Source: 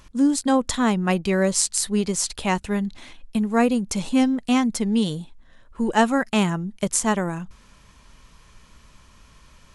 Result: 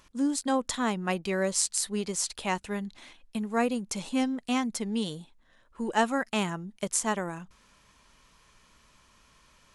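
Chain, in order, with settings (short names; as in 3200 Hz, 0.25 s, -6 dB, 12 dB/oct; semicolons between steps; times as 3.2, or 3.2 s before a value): low shelf 190 Hz -10 dB; gain -5.5 dB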